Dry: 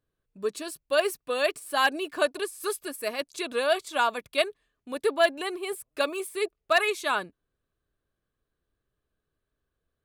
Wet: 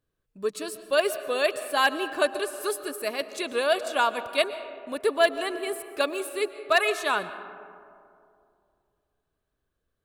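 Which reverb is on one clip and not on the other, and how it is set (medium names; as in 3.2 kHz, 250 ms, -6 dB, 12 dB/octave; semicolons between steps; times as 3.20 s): algorithmic reverb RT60 2.5 s, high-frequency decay 0.35×, pre-delay 85 ms, DRR 12 dB; trim +1 dB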